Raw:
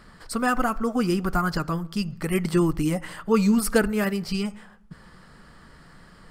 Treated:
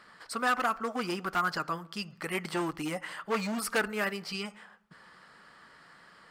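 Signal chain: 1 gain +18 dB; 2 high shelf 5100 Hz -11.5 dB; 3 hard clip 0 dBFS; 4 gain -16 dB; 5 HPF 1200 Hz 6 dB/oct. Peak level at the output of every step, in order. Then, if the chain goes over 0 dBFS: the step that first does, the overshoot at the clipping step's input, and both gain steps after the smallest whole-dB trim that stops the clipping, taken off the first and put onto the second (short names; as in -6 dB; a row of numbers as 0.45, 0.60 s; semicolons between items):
+10.5, +10.0, 0.0, -16.0, -15.0 dBFS; step 1, 10.0 dB; step 1 +8 dB, step 4 -6 dB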